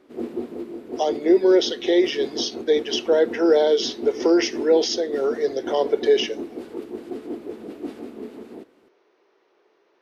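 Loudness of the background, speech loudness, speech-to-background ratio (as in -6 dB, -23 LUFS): -33.5 LUFS, -21.0 LUFS, 12.5 dB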